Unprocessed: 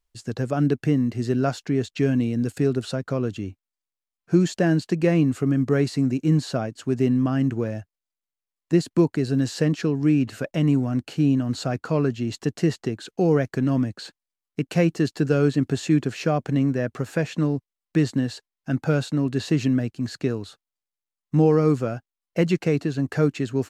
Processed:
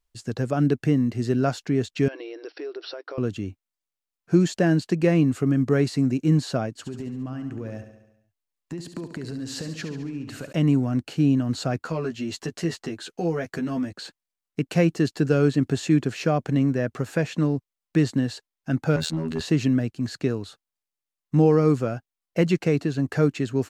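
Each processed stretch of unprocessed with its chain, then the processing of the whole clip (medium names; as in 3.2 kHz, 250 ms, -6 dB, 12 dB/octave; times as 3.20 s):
2.08–3.18 s: brick-wall FIR band-pass 300–5800 Hz + compression 4:1, threshold -32 dBFS
6.73–10.53 s: compression 12:1, threshold -29 dBFS + feedback delay 70 ms, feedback 60%, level -9.5 dB
11.79–13.93 s: bass shelf 410 Hz -6.5 dB + compression 2:1, threshold -26 dBFS + doubling 12 ms -3 dB
18.96–19.41 s: robot voice 80.3 Hz + hard clipper -20 dBFS + decay stretcher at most 42 dB/s
whole clip: none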